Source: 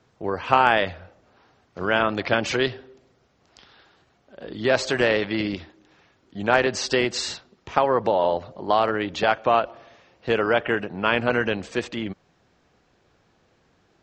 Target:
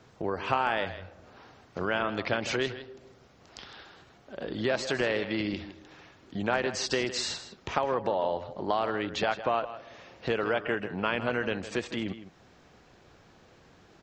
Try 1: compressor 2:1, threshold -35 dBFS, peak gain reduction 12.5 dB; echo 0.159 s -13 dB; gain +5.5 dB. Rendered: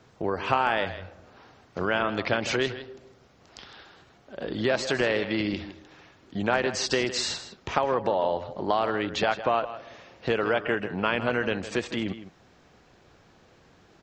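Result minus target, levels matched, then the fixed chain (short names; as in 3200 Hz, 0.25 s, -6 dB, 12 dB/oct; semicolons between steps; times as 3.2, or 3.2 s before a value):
compressor: peak gain reduction -3.5 dB
compressor 2:1, threshold -41.5 dBFS, peak gain reduction 16 dB; echo 0.159 s -13 dB; gain +5.5 dB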